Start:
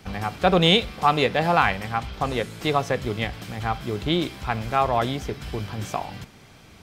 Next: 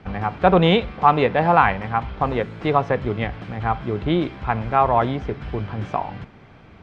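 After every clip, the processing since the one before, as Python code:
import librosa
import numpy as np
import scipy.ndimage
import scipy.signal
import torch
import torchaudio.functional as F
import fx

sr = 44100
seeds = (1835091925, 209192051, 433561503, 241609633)

y = fx.dynamic_eq(x, sr, hz=940.0, q=5.8, threshold_db=-40.0, ratio=4.0, max_db=5)
y = scipy.signal.sosfilt(scipy.signal.butter(2, 2000.0, 'lowpass', fs=sr, output='sos'), y)
y = F.gain(torch.from_numpy(y), 3.5).numpy()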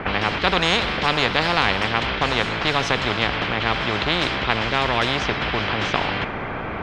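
y = fx.env_lowpass(x, sr, base_hz=2000.0, full_db=-16.0)
y = fx.spectral_comp(y, sr, ratio=4.0)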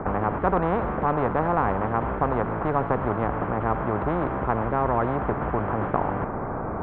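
y = scipy.signal.sosfilt(scipy.signal.butter(4, 1200.0, 'lowpass', fs=sr, output='sos'), x)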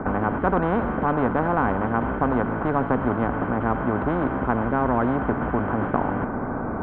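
y = fx.small_body(x, sr, hz=(250.0, 1500.0, 3100.0), ring_ms=45, db=9)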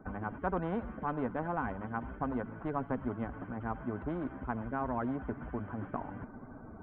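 y = fx.bin_expand(x, sr, power=2.0)
y = F.gain(torch.from_numpy(y), -8.5).numpy()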